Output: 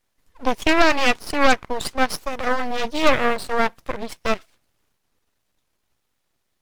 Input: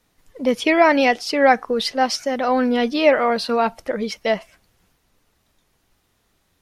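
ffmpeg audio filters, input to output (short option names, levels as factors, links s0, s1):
-af "aeval=exprs='0.891*(cos(1*acos(clip(val(0)/0.891,-1,1)))-cos(1*PI/2))+0.1*(cos(3*acos(clip(val(0)/0.891,-1,1)))-cos(3*PI/2))+0.282*(cos(6*acos(clip(val(0)/0.891,-1,1)))-cos(6*PI/2))':c=same,aeval=exprs='abs(val(0))':c=same,volume=0.708"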